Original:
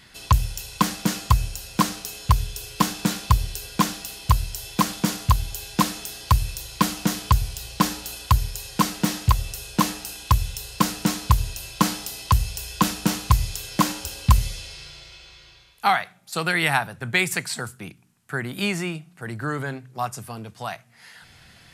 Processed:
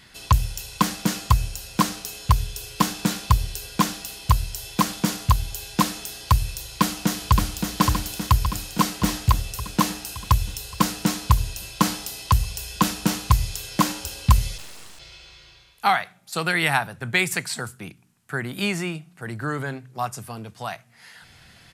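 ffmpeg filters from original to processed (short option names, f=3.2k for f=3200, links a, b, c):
-filter_complex "[0:a]asplit=2[a][b];[b]afade=t=in:st=6.62:d=0.01,afade=t=out:st=7.69:d=0.01,aecho=0:1:570|1140|1710|2280|2850|3420|3990|4560|5130|5700:0.595662|0.38718|0.251667|0.163584|0.106329|0.0691141|0.0449242|0.0292007|0.0189805|0.0123373[c];[a][c]amix=inputs=2:normalize=0,asplit=3[d][e][f];[d]afade=t=out:st=14.57:d=0.02[g];[e]aeval=exprs='abs(val(0))':c=same,afade=t=in:st=14.57:d=0.02,afade=t=out:st=14.98:d=0.02[h];[f]afade=t=in:st=14.98:d=0.02[i];[g][h][i]amix=inputs=3:normalize=0"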